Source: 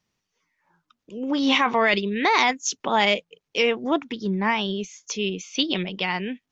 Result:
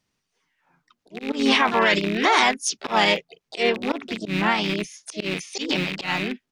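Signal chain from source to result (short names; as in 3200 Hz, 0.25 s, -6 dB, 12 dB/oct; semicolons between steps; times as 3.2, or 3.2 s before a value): rattling part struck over -36 dBFS, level -18 dBFS; harmoniser -3 st -7 dB, +7 st -7 dB; auto swell 0.104 s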